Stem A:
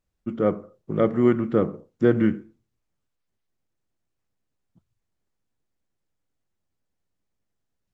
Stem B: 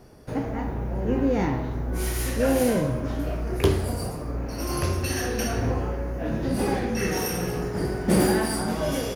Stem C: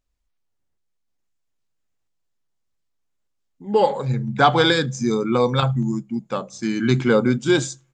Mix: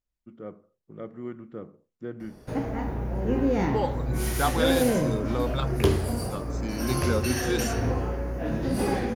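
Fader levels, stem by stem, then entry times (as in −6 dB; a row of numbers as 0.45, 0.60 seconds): −18.0, −1.0, −11.0 decibels; 0.00, 2.20, 0.00 seconds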